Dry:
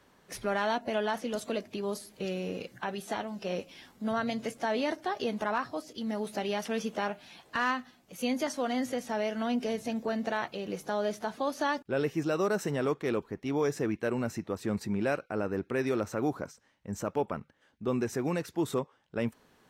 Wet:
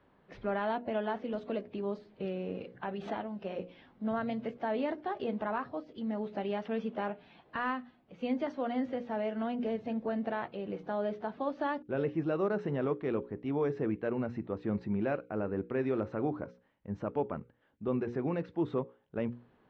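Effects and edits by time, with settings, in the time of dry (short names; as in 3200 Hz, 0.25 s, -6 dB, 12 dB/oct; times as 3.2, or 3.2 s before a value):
2.83–3.23 backwards sustainer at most 54 dB/s
whole clip: LPF 3600 Hz 24 dB/oct; tilt shelf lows +5 dB, about 1400 Hz; notches 60/120/180/240/300/360/420/480/540 Hz; gain -5.5 dB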